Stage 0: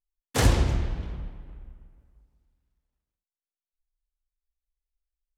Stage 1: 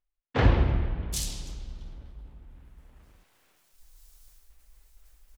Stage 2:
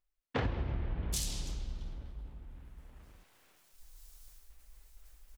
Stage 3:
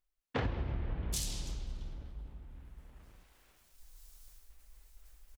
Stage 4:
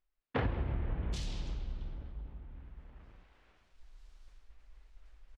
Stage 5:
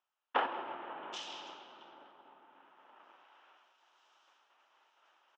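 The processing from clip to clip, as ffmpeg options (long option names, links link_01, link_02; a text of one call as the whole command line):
ffmpeg -i in.wav -filter_complex "[0:a]areverse,acompressor=mode=upward:threshold=-30dB:ratio=2.5,areverse,acrossover=split=3400[link_01][link_02];[link_02]adelay=780[link_03];[link_01][link_03]amix=inputs=2:normalize=0" out.wav
ffmpeg -i in.wav -af "acompressor=threshold=-30dB:ratio=12" out.wav
ffmpeg -i in.wav -filter_complex "[0:a]asplit=2[link_01][link_02];[link_02]adelay=535,lowpass=frequency=900:poles=1,volume=-19dB,asplit=2[link_03][link_04];[link_04]adelay=535,lowpass=frequency=900:poles=1,volume=0.38,asplit=2[link_05][link_06];[link_06]adelay=535,lowpass=frequency=900:poles=1,volume=0.38[link_07];[link_01][link_03][link_05][link_07]amix=inputs=4:normalize=0,volume=-1dB" out.wav
ffmpeg -i in.wav -af "lowpass=3000,volume=1.5dB" out.wav
ffmpeg -i in.wav -af "highpass=frequency=390:width=0.5412,highpass=frequency=390:width=1.3066,equalizer=frequency=460:width_type=q:width=4:gain=-8,equalizer=frequency=890:width_type=q:width=4:gain=8,equalizer=frequency=1300:width_type=q:width=4:gain=6,equalizer=frequency=2100:width_type=q:width=4:gain=-6,equalizer=frequency=3000:width_type=q:width=4:gain=6,equalizer=frequency=4400:width_type=q:width=4:gain=-10,lowpass=frequency=6100:width=0.5412,lowpass=frequency=6100:width=1.3066,volume=3.5dB" out.wav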